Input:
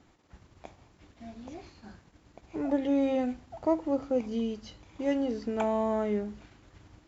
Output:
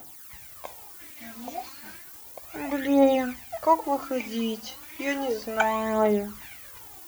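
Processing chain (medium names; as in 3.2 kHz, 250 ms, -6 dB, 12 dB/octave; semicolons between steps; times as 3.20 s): tilt EQ +2.5 dB/octave; added noise violet -51 dBFS; phaser 0.33 Hz, delay 4.3 ms, feedback 58%; sweeping bell 1.3 Hz 700–2300 Hz +10 dB; trim +3.5 dB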